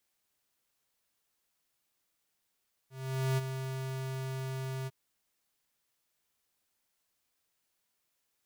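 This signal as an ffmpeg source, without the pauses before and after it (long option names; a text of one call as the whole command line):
ffmpeg -f lavfi -i "aevalsrc='0.0376*(2*lt(mod(132*t,1),0.5)-1)':duration=2.003:sample_rate=44100,afade=type=in:duration=0.475,afade=type=out:start_time=0.475:duration=0.027:silence=0.376,afade=type=out:start_time=1.97:duration=0.033" out.wav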